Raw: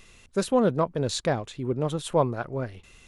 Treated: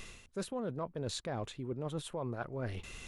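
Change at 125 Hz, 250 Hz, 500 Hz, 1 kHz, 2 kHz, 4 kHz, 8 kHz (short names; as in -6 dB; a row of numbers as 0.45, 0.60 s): -10.0, -12.5, -14.0, -14.0, -9.5, -9.0, -10.0 dB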